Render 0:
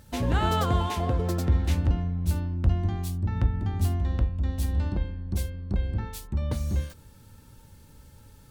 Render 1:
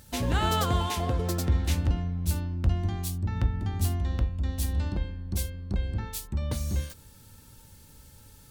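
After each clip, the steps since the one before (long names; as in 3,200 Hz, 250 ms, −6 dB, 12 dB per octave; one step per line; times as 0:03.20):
high-shelf EQ 2,800 Hz +8.5 dB
level −2 dB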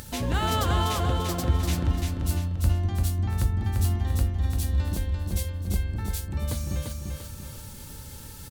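upward compression, threshold −32 dBFS
repeating echo 344 ms, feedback 45%, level −4 dB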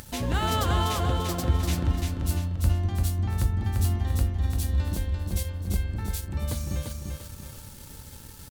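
dead-zone distortion −49.5 dBFS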